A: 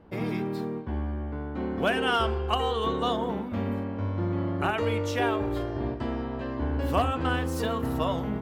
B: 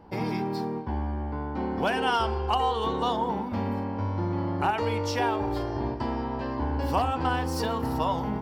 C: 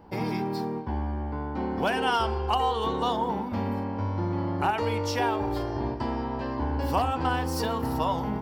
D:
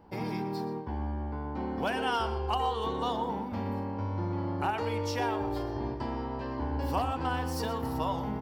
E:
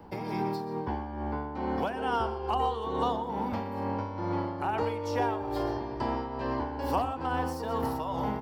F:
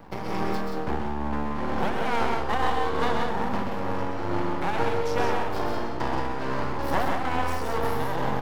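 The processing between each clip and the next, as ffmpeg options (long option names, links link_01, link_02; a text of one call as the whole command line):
ffmpeg -i in.wav -af "superequalizer=9b=2.51:14b=2.51,acompressor=threshold=-29dB:ratio=1.5,volume=1.5dB" out.wav
ffmpeg -i in.wav -af "highshelf=frequency=12000:gain=6.5" out.wav
ffmpeg -i in.wav -filter_complex "[0:a]asplit=2[link_01][link_02];[link_02]adelay=122.4,volume=-13dB,highshelf=frequency=4000:gain=-2.76[link_03];[link_01][link_03]amix=inputs=2:normalize=0,volume=-5dB" out.wav
ffmpeg -i in.wav -filter_complex "[0:a]acrossover=split=160|380|1400[link_01][link_02][link_03][link_04];[link_01]acompressor=threshold=-46dB:ratio=4[link_05];[link_02]acompressor=threshold=-44dB:ratio=4[link_06];[link_03]acompressor=threshold=-34dB:ratio=4[link_07];[link_04]acompressor=threshold=-51dB:ratio=4[link_08];[link_05][link_06][link_07][link_08]amix=inputs=4:normalize=0,tremolo=f=2.3:d=0.55,volume=7.5dB" out.wav
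ffmpeg -i in.wav -filter_complex "[0:a]aeval=exprs='max(val(0),0)':channel_layout=same,asplit=2[link_01][link_02];[link_02]aecho=0:1:131.2|177.8:0.562|0.501[link_03];[link_01][link_03]amix=inputs=2:normalize=0,volume=6.5dB" out.wav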